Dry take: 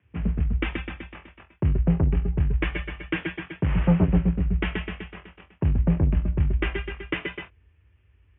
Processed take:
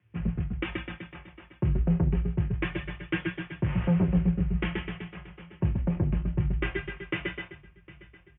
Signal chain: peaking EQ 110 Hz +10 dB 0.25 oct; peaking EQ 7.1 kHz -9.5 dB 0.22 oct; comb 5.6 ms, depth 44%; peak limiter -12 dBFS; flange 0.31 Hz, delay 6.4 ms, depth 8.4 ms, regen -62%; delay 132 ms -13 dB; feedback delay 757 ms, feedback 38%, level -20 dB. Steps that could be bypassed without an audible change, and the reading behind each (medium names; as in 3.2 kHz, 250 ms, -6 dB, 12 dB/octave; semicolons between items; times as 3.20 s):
peaking EQ 7.1 kHz: input has nothing above 540 Hz